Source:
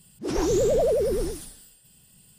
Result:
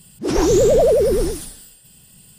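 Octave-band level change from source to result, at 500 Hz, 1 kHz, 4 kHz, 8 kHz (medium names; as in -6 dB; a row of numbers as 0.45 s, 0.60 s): +8.0 dB, +8.0 dB, +8.0 dB, +8.0 dB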